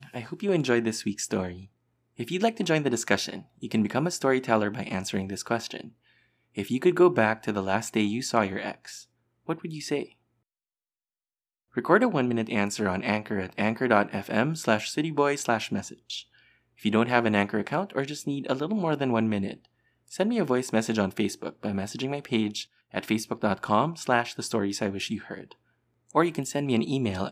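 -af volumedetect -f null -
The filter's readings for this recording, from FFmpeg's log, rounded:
mean_volume: -27.8 dB
max_volume: -4.4 dB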